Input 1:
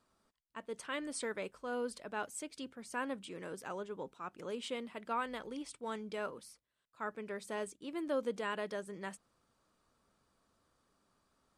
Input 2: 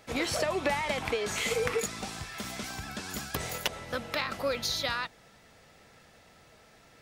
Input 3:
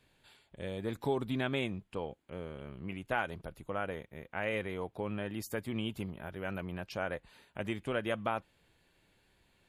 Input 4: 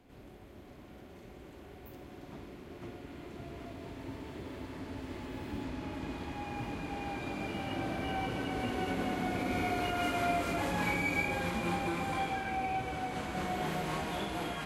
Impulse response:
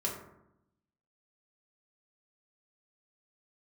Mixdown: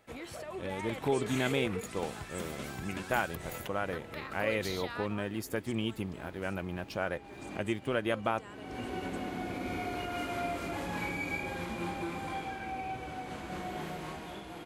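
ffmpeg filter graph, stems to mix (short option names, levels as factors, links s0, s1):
-filter_complex "[0:a]equalizer=f=7000:w=1.5:g=12.5,volume=0.126[s0];[1:a]equalizer=f=5300:w=1.4:g=-8.5,alimiter=level_in=1.19:limit=0.0631:level=0:latency=1:release=216,volume=0.841,volume=0.398[s1];[2:a]aeval=exprs='sgn(val(0))*max(abs(val(0))-0.001,0)':c=same,volume=0.794,asplit=2[s2][s3];[3:a]adelay=150,volume=0.376[s4];[s3]apad=whole_len=652995[s5];[s4][s5]sidechaincompress=threshold=0.00224:ratio=3:attack=26:release=310[s6];[s0][s1][s2][s6]amix=inputs=4:normalize=0,equalizer=f=350:t=o:w=0.21:g=3.5,dynaudnorm=f=130:g=13:m=1.68"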